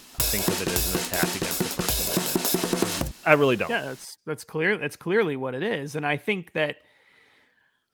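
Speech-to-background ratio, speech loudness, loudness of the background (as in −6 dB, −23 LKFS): −2.0 dB, −27.0 LKFS, −25.0 LKFS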